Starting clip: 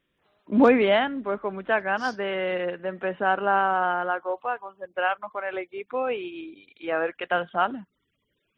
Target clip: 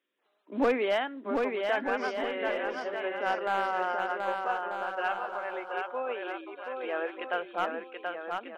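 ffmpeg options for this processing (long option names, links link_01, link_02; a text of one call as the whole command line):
ffmpeg -i in.wav -af "highpass=frequency=280:width=0.5412,highpass=frequency=280:width=1.3066,aeval=exprs='clip(val(0),-1,0.188)':channel_layout=same,aecho=1:1:730|1241|1599|1849|2024:0.631|0.398|0.251|0.158|0.1,volume=-7dB" out.wav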